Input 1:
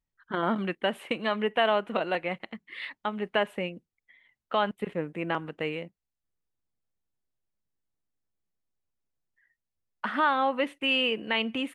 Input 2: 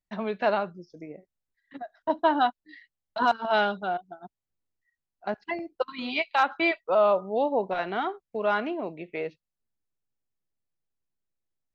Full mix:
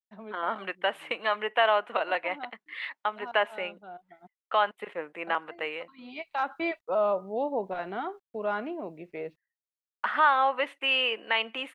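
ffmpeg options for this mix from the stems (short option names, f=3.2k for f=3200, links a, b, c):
-filter_complex "[0:a]highpass=750,agate=range=-21dB:threshold=-56dB:ratio=16:detection=peak,volume=-4.5dB,asplit=2[a][b];[1:a]acrusher=bits=10:mix=0:aa=0.000001,volume=-14dB[c];[b]apad=whole_len=517819[d];[c][d]sidechaincompress=threshold=-47dB:ratio=8:attack=11:release=809[e];[a][e]amix=inputs=2:normalize=0,highshelf=f=3.1k:g=-11,dynaudnorm=f=300:g=3:m=10dB"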